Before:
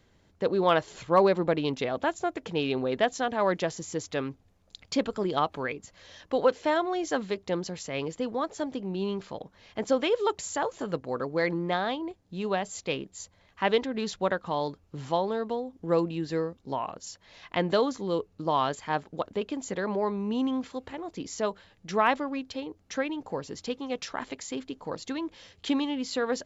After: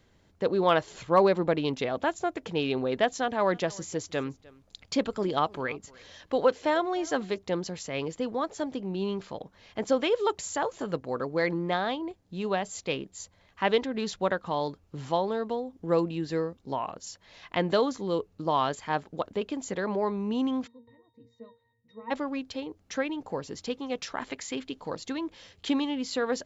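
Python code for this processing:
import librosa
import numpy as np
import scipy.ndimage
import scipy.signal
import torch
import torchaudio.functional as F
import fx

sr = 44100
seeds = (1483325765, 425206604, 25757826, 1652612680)

y = fx.echo_single(x, sr, ms=303, db=-23.0, at=(3.52, 7.37), fade=0.02)
y = fx.octave_resonator(y, sr, note='A#', decay_s=0.3, at=(20.66, 22.1), fade=0.02)
y = fx.peak_eq(y, sr, hz=fx.line((24.28, 1500.0), (24.92, 4500.0)), db=5.5, octaves=1.3, at=(24.28, 24.92), fade=0.02)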